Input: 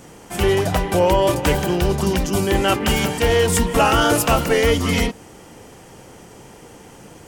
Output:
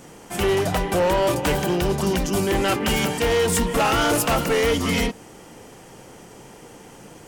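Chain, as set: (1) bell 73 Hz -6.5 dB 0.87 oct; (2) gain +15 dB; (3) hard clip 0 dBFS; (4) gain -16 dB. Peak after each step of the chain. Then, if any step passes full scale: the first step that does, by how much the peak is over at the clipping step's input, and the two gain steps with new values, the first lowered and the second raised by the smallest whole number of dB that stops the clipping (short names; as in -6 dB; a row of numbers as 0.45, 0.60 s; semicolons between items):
-6.0, +9.0, 0.0, -16.0 dBFS; step 2, 9.0 dB; step 2 +6 dB, step 4 -7 dB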